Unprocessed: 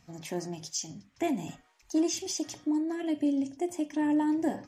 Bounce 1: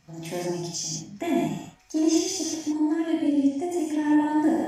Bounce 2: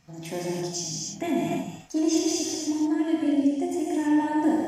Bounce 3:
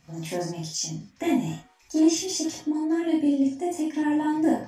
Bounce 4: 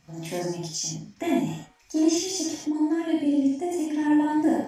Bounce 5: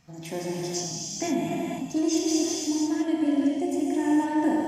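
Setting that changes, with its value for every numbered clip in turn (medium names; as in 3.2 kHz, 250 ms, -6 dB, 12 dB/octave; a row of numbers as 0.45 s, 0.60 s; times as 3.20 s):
gated-style reverb, gate: 210 ms, 350 ms, 90 ms, 140 ms, 530 ms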